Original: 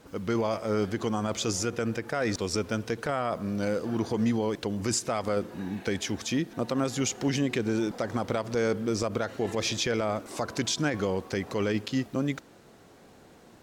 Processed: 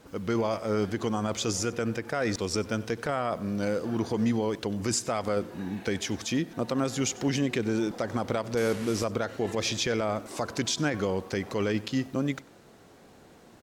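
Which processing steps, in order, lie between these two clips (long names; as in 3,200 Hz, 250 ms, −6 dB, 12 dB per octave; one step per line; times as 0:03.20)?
0:08.57–0:09.04: linear delta modulator 64 kbit/s, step −33 dBFS
single-tap delay 95 ms −21.5 dB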